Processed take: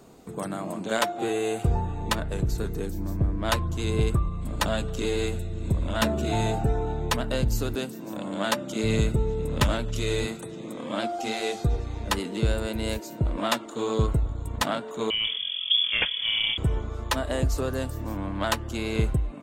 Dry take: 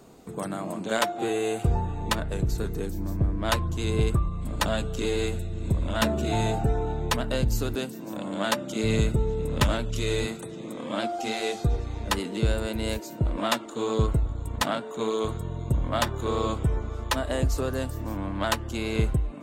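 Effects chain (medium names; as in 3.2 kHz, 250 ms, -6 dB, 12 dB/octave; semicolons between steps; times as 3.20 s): 15.10–16.58 s: frequency inversion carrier 3.4 kHz; speakerphone echo 270 ms, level -28 dB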